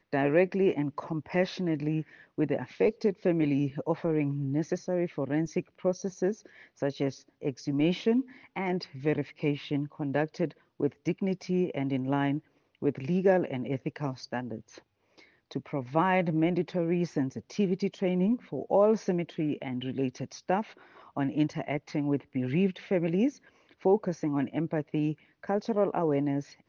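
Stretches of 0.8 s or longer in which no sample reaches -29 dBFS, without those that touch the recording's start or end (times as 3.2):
14.55–15.56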